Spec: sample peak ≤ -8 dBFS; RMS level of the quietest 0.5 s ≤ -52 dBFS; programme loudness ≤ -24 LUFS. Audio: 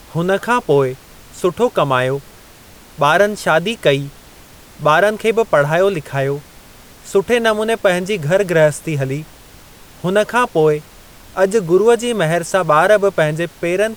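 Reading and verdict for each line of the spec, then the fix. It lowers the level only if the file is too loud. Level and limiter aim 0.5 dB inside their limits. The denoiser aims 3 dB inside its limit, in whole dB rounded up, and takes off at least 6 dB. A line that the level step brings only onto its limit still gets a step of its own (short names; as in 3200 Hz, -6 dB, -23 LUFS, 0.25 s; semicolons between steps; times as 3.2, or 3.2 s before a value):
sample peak -1.5 dBFS: fail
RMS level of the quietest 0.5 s -42 dBFS: fail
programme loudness -16.0 LUFS: fail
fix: denoiser 6 dB, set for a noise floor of -42 dBFS; gain -8.5 dB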